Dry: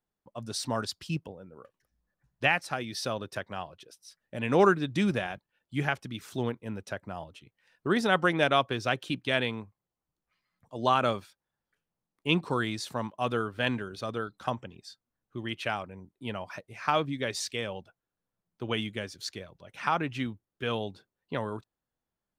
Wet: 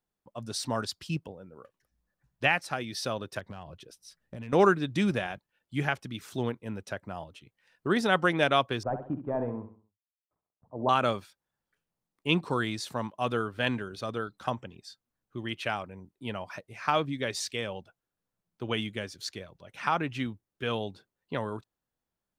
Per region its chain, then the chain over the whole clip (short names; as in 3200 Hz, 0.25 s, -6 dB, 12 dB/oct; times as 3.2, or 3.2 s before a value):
3.39–4.53 low shelf 250 Hz +11.5 dB + compressor, threshold -37 dBFS + hard clip -31.5 dBFS
8.83–10.89 CVSD 64 kbps + LPF 1000 Hz 24 dB/oct + feedback echo 66 ms, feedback 38%, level -9.5 dB
whole clip: dry